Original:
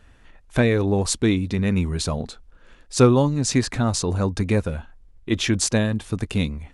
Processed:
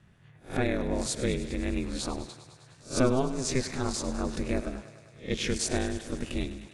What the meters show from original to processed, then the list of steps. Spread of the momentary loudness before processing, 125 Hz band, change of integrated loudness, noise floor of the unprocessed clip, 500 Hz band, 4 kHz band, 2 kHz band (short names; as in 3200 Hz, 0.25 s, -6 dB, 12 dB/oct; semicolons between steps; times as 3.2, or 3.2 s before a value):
11 LU, -13.0 dB, -9.0 dB, -52 dBFS, -8.0 dB, -7.5 dB, -7.5 dB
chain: spectral swells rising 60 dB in 0.30 s; ring modulator 130 Hz; thinning echo 0.102 s, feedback 77%, high-pass 280 Hz, level -14 dB; gain -6.5 dB